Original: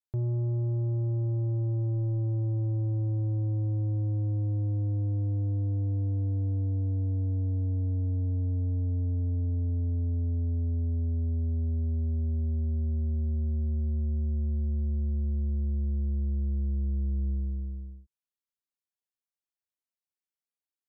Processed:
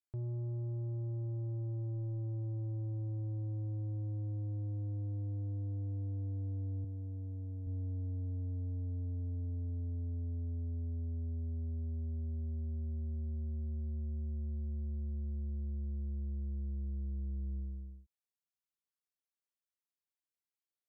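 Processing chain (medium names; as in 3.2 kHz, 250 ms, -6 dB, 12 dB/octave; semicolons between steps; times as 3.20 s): 6.84–7.67 s: high-pass 64 Hz 12 dB/octave; peak limiter -30 dBFS, peak gain reduction 6.5 dB; trim -6 dB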